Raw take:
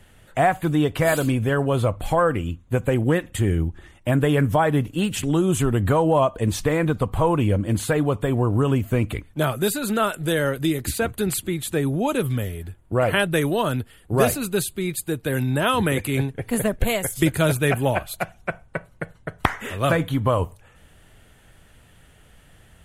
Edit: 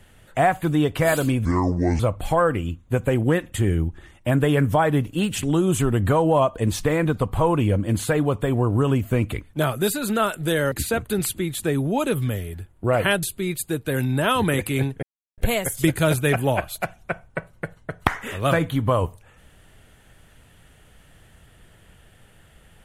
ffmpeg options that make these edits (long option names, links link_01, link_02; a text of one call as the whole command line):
ffmpeg -i in.wav -filter_complex "[0:a]asplit=7[link_01][link_02][link_03][link_04][link_05][link_06][link_07];[link_01]atrim=end=1.454[link_08];[link_02]atrim=start=1.45:end=1.8,asetpts=PTS-STARTPTS,asetrate=28224,aresample=44100,atrim=end_sample=24117,asetpts=PTS-STARTPTS[link_09];[link_03]atrim=start=1.796:end=10.522[link_10];[link_04]atrim=start=10.798:end=13.312[link_11];[link_05]atrim=start=14.608:end=16.41,asetpts=PTS-STARTPTS,afade=type=out:start_time=1.798:duration=0.004:curve=hsin[link_12];[link_06]atrim=start=16.41:end=16.76,asetpts=PTS-STARTPTS,volume=0[link_13];[link_07]atrim=start=16.76,asetpts=PTS-STARTPTS,afade=type=in:duration=0.004:curve=hsin[link_14];[link_08][link_09]acrossfade=duration=0.004:curve1=hsin:curve2=hsin[link_15];[link_15][link_10]acrossfade=duration=0.004:curve1=hsin:curve2=hsin[link_16];[link_16][link_11]acrossfade=duration=0.004:curve1=hsin:curve2=hsin[link_17];[link_12][link_13][link_14]concat=n=3:v=0:a=1[link_18];[link_17][link_18]acrossfade=duration=0.004:curve1=hsin:curve2=hsin" out.wav